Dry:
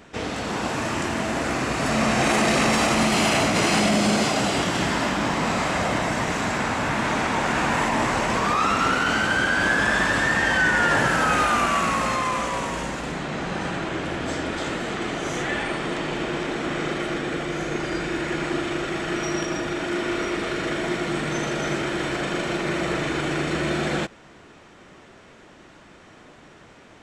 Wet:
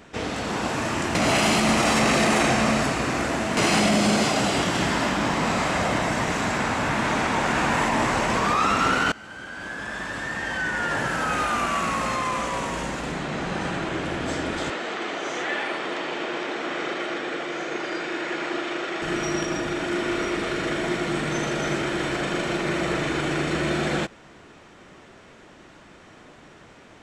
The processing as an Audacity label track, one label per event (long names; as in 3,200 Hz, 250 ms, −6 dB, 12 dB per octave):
1.150000	3.570000	reverse
9.120000	13.010000	fade in, from −22.5 dB
14.700000	19.020000	band-pass filter 360–6,000 Hz